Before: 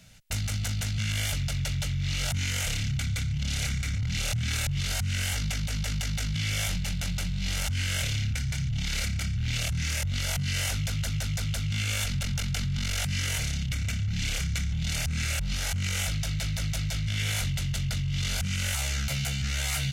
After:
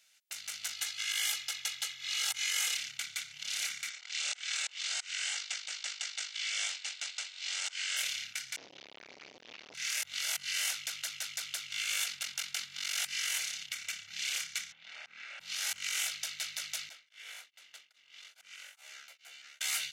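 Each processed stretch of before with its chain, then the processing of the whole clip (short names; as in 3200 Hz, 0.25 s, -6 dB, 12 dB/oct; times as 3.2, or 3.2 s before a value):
0.73–2.77 low shelf 100 Hz -9 dB + comb 2.4 ms, depth 74%
3.89–7.97 Chebyshev band-pass 370–8100 Hz, order 4 + hard clip -20 dBFS
8.56–9.74 delta modulation 32 kbps, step -45 dBFS + low shelf 82 Hz +8 dB + core saturation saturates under 390 Hz
14.72–15.4 HPF 270 Hz + tape spacing loss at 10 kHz 40 dB
16.89–19.61 ladder high-pass 270 Hz, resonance 30% + bell 11000 Hz -10.5 dB 3 oct + beating tremolo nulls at 2.4 Hz
whole clip: Bessel high-pass 1600 Hz, order 2; AGC gain up to 7 dB; gain -8 dB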